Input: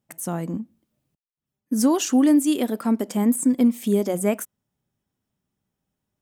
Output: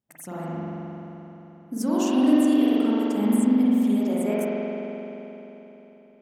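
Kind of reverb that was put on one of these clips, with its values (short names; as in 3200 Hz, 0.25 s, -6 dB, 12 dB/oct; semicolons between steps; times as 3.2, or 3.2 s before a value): spring tank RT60 3.7 s, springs 43 ms, chirp 30 ms, DRR -8.5 dB; gain -10 dB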